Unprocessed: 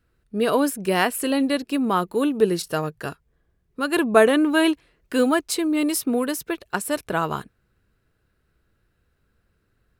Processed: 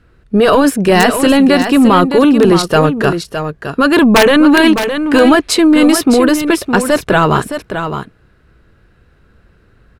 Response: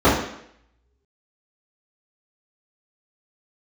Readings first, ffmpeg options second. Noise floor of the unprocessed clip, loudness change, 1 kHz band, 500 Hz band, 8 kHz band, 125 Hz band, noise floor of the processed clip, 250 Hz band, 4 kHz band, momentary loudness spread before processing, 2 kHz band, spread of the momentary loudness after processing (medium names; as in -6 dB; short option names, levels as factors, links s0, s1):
-70 dBFS, +12.0 dB, +12.0 dB, +11.0 dB, +9.0 dB, +16.0 dB, -50 dBFS, +13.5 dB, +13.0 dB, 11 LU, +12.0 dB, 12 LU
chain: -filter_complex "[0:a]aeval=exprs='(mod(2.11*val(0)+1,2)-1)/2.11':c=same,aemphasis=mode=reproduction:type=50fm,apsyclip=12.6,asplit=2[s0][s1];[s1]aecho=0:1:614:0.376[s2];[s0][s2]amix=inputs=2:normalize=0,volume=0.631"